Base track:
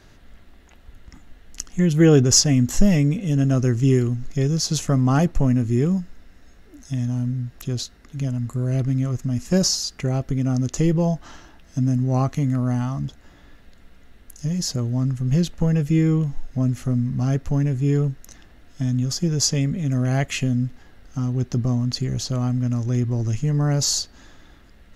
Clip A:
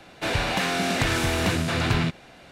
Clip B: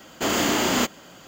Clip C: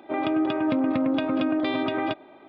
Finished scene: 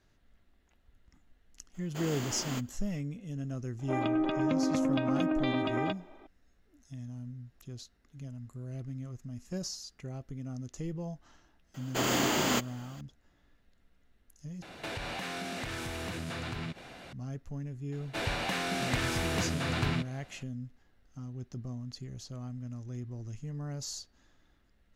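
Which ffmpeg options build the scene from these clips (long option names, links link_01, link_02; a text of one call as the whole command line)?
ffmpeg -i bed.wav -i cue0.wav -i cue1.wav -i cue2.wav -filter_complex "[2:a]asplit=2[link_01][link_02];[1:a]asplit=2[link_03][link_04];[0:a]volume=-18.5dB[link_05];[link_03]acompressor=threshold=-35dB:ratio=6:attack=3.2:release=140:knee=1:detection=peak[link_06];[link_05]asplit=2[link_07][link_08];[link_07]atrim=end=14.624[link_09];[link_06]atrim=end=2.51[link_10];[link_08]atrim=start=17.126[link_11];[link_01]atrim=end=1.27,asetpts=PTS-STARTPTS,volume=-17.5dB,afade=type=in:duration=0.004:curve=hsin,afade=type=out:start_time=1.266:duration=0.004:curve=hsin,adelay=1740[link_12];[3:a]atrim=end=2.48,asetpts=PTS-STARTPTS,volume=-5.5dB,afade=type=in:duration=0.004:curve=hsin,afade=type=out:start_time=2.476:duration=0.004:curve=hsin,adelay=3790[link_13];[link_02]atrim=end=1.27,asetpts=PTS-STARTPTS,volume=-6.5dB,afade=type=in:duration=0.004:curve=hsin,afade=type=out:start_time=1.266:duration=0.004:curve=hsin,adelay=11740[link_14];[link_04]atrim=end=2.51,asetpts=PTS-STARTPTS,volume=-8dB,afade=type=in:duration=0.004:curve=hsin,afade=type=out:start_time=2.506:duration=0.004:curve=hsin,adelay=17920[link_15];[link_09][link_10]acrossfade=duration=0.004:curve1=hsin:curve2=hsin[link_16];[link_16][link_11]acrossfade=duration=0.004:curve1=hsin:curve2=hsin[link_17];[link_17][link_12][link_13][link_14][link_15]amix=inputs=5:normalize=0" out.wav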